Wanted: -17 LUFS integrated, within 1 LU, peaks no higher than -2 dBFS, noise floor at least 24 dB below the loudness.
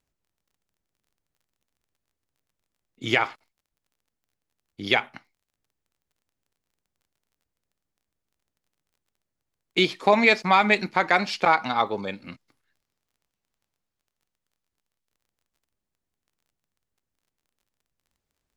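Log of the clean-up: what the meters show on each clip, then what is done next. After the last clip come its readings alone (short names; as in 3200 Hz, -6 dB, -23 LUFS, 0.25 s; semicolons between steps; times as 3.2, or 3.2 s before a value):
ticks 20/s; loudness -22.0 LUFS; peak -4.5 dBFS; loudness target -17.0 LUFS
-> de-click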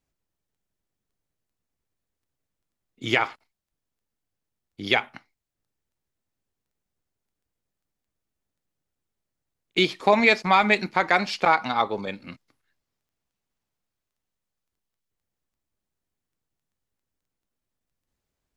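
ticks 0/s; loudness -22.0 LUFS; peak -4.5 dBFS; loudness target -17.0 LUFS
-> gain +5 dB; limiter -2 dBFS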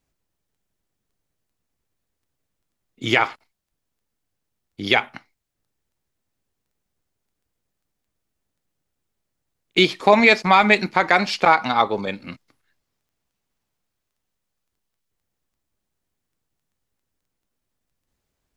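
loudness -17.5 LUFS; peak -2.0 dBFS; noise floor -80 dBFS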